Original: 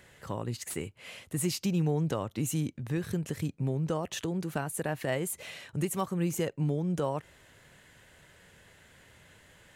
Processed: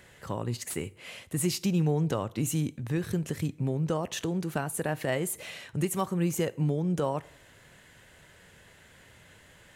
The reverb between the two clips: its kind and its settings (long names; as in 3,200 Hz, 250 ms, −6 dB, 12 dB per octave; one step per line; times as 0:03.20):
dense smooth reverb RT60 0.66 s, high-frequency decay 0.8×, DRR 18.5 dB
level +2 dB